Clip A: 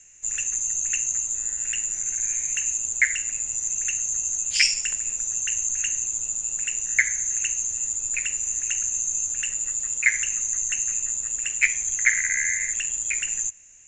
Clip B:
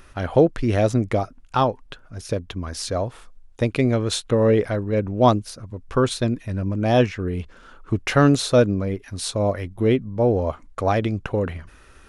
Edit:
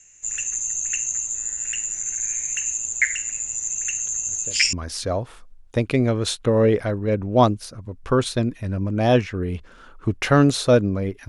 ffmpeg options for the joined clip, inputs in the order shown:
ffmpeg -i cue0.wav -i cue1.wav -filter_complex "[1:a]asplit=2[link_01][link_02];[0:a]apad=whole_dur=11.28,atrim=end=11.28,atrim=end=4.732[link_03];[link_02]atrim=start=2.578:end=9.13[link_04];[link_01]atrim=start=1.88:end=2.58,asetpts=PTS-STARTPTS,volume=-16.5dB,afade=type=in:duration=0.004:curve=hsin,afade=type=out:start_time=0.696:duration=0.004:curve=hsin,adelay=4030[link_05];[link_03][link_04]acrossfade=duration=0.004:curve1=hsin:curve2=hsin[link_06];[link_06][link_05]amix=inputs=2:normalize=0" out.wav

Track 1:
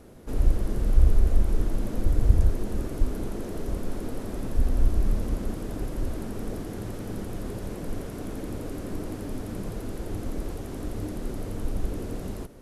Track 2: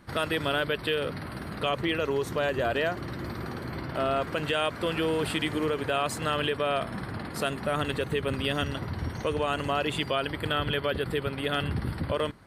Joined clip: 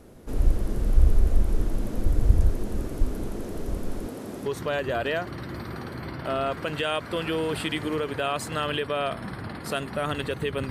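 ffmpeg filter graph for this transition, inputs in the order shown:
ffmpeg -i cue0.wav -i cue1.wav -filter_complex "[0:a]asettb=1/sr,asplit=3[link_01][link_02][link_03];[link_01]atrim=end=4.064[link_04];[link_02]atrim=start=4.06:end=4.46,asetpts=PTS-STARTPTS,afade=type=in:duration=0.004:curve=qsin,afade=type=out:start_time=0.396:duration=0.004:curve=qsin,highpass=140[link_05];[link_03]atrim=start=4.456[link_06];[link_04][link_05]acrossfade=duration=0.004:curve1=hsin:curve2=qsin[link_07];[link_07][link_06]acrossfade=duration=0.004:curve1=qsin:curve2=hsin,apad=whole_dur=10.7,atrim=end=10.7,atrim=end=4.462[link_08];[1:a]atrim=start=2.158:end=8.4[link_09];[link_08][link_09]acrossfade=duration=0.004:curve1=hsin:curve2=hsin" out.wav

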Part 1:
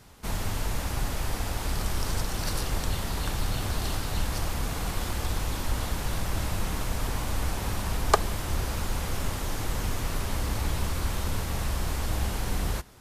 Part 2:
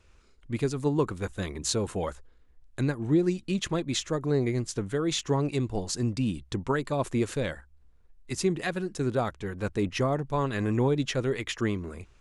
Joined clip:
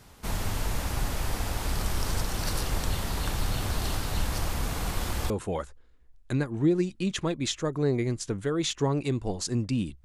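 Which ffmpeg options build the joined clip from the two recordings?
ffmpeg -i cue0.wav -i cue1.wav -filter_complex "[0:a]apad=whole_dur=10.04,atrim=end=10.04,atrim=end=5.302[link_01];[1:a]atrim=start=1.778:end=6.52[link_02];[link_01][link_02]acrossfade=duration=0.004:curve1=hsin:curve2=hsin" out.wav

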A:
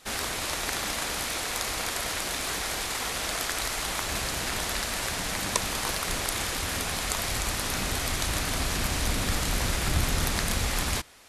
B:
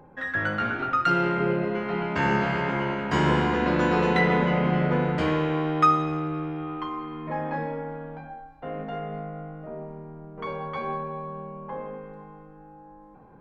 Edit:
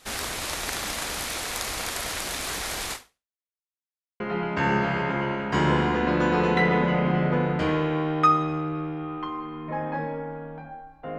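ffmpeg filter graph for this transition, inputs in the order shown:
ffmpeg -i cue0.wav -i cue1.wav -filter_complex "[0:a]apad=whole_dur=11.18,atrim=end=11.18,asplit=2[link_01][link_02];[link_01]atrim=end=3.38,asetpts=PTS-STARTPTS,afade=type=out:start_time=2.93:duration=0.45:curve=exp[link_03];[link_02]atrim=start=3.38:end=4.2,asetpts=PTS-STARTPTS,volume=0[link_04];[1:a]atrim=start=1.79:end=8.77,asetpts=PTS-STARTPTS,afade=type=in:duration=0.004:curve=hsin[link_05];[link_03][link_04][link_05]concat=n=3:v=0:a=1" out.wav

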